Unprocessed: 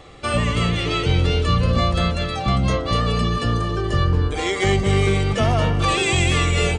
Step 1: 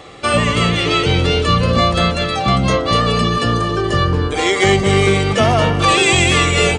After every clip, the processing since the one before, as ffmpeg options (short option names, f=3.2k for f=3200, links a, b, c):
-af "highpass=f=170:p=1,volume=7.5dB"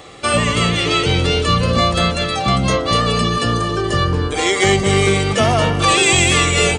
-af "highshelf=f=7.1k:g=9.5,volume=-1.5dB"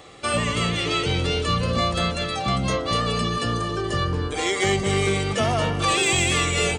-af "aeval=exprs='0.891*(cos(1*acos(clip(val(0)/0.891,-1,1)))-cos(1*PI/2))+0.0501*(cos(3*acos(clip(val(0)/0.891,-1,1)))-cos(3*PI/2))+0.0355*(cos(5*acos(clip(val(0)/0.891,-1,1)))-cos(5*PI/2))':c=same,volume=-7dB"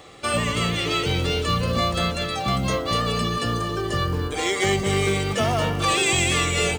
-af "acrusher=bits=7:mode=log:mix=0:aa=0.000001"